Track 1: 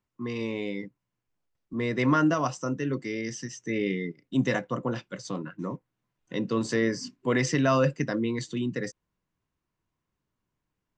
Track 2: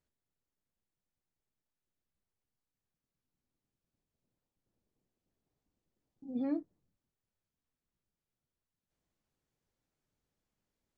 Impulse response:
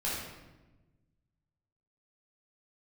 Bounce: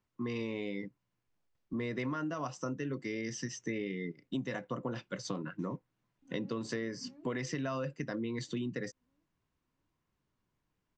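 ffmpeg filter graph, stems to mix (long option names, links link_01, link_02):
-filter_complex "[0:a]lowpass=6700,volume=0.5dB[link_01];[1:a]volume=-15.5dB,asplit=2[link_02][link_03];[link_03]volume=-7dB,aecho=0:1:665|1330|1995|2660|3325:1|0.39|0.152|0.0593|0.0231[link_04];[link_01][link_02][link_04]amix=inputs=3:normalize=0,acompressor=threshold=-33dB:ratio=10"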